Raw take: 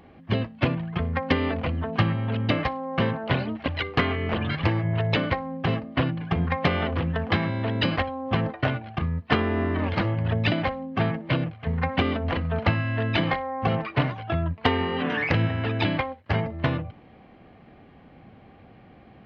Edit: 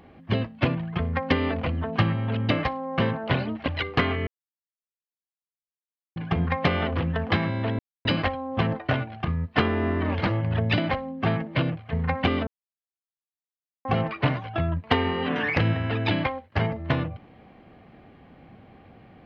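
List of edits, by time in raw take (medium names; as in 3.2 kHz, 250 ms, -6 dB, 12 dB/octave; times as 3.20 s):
4.27–6.16 s: mute
7.79 s: insert silence 0.26 s
12.21–13.59 s: mute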